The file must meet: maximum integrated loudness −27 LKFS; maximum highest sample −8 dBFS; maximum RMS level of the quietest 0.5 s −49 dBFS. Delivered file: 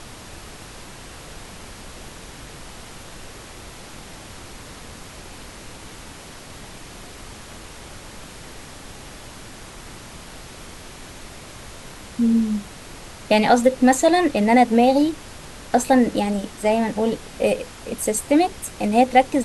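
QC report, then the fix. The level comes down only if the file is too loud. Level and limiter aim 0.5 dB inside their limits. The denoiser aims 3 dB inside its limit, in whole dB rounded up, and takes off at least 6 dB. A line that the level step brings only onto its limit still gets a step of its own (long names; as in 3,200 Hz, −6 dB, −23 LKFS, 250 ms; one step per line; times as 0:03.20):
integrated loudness −19.0 LKFS: out of spec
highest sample −2.0 dBFS: out of spec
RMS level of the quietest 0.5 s −39 dBFS: out of spec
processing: broadband denoise 6 dB, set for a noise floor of −39 dBFS
level −8.5 dB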